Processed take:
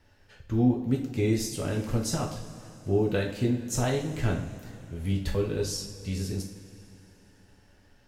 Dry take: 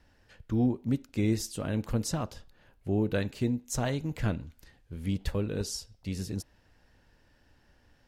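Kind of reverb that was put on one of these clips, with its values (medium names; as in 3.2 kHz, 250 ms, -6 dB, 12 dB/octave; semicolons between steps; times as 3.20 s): two-slope reverb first 0.44 s, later 3.6 s, from -18 dB, DRR -0.5 dB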